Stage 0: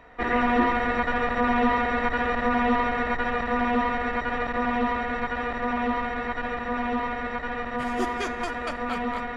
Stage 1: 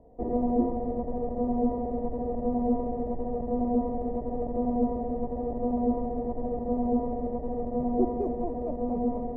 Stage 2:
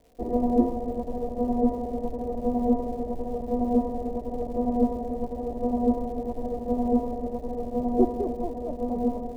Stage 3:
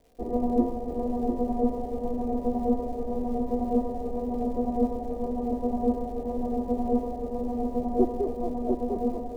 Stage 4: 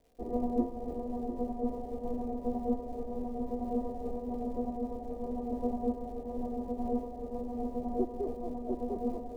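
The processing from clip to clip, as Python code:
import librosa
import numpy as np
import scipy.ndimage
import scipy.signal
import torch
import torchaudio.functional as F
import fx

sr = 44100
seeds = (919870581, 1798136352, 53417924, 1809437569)

y1 = scipy.signal.sosfilt(scipy.signal.cheby2(4, 40, 1300.0, 'lowpass', fs=sr, output='sos'), x)
y1 = fx.rider(y1, sr, range_db=10, speed_s=2.0)
y2 = fx.peak_eq(y1, sr, hz=140.0, db=-7.5, octaves=0.26)
y2 = fx.dmg_crackle(y2, sr, seeds[0], per_s=280.0, level_db=-46.0)
y2 = fx.upward_expand(y2, sr, threshold_db=-41.0, expansion=1.5)
y2 = F.gain(torch.from_numpy(y2), 5.0).numpy()
y3 = fx.comb_fb(y2, sr, f0_hz=400.0, decay_s=0.19, harmonics='all', damping=0.0, mix_pct=60)
y3 = y3 + 10.0 ** (-4.5 / 20.0) * np.pad(y3, (int(698 * sr / 1000.0), 0))[:len(y3)]
y3 = F.gain(torch.from_numpy(y3), 5.0).numpy()
y4 = fx.am_noise(y3, sr, seeds[1], hz=5.7, depth_pct=60)
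y4 = F.gain(torch.from_numpy(y4), -4.0).numpy()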